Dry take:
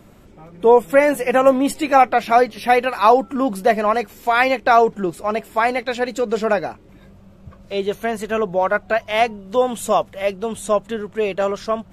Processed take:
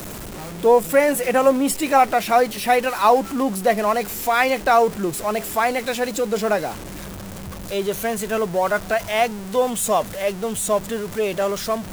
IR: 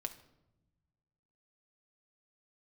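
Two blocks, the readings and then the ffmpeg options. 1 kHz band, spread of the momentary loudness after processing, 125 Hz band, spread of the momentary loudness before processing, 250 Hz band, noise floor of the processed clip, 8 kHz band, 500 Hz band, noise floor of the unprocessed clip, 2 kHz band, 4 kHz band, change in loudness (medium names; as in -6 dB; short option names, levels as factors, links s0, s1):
-2.5 dB, 11 LU, +2.0 dB, 9 LU, -1.0 dB, -34 dBFS, +8.0 dB, -2.0 dB, -47 dBFS, -2.0 dB, +1.0 dB, -2.0 dB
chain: -filter_complex "[0:a]aeval=exprs='val(0)+0.5*0.0473*sgn(val(0))':c=same,acrossover=split=100|6200[s0][s1][s2];[s2]acontrast=81[s3];[s0][s1][s3]amix=inputs=3:normalize=0,volume=0.708"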